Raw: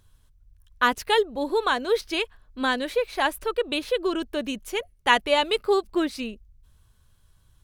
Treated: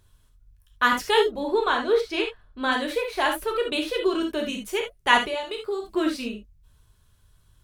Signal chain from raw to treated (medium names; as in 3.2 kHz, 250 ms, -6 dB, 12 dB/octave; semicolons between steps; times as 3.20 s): 1.40–2.72 s: treble shelf 6.3 kHz -11.5 dB; 5.18–5.82 s: compression 5:1, threshold -30 dBFS, peak gain reduction 13 dB; gated-style reverb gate 100 ms flat, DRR 1.5 dB; trim -1 dB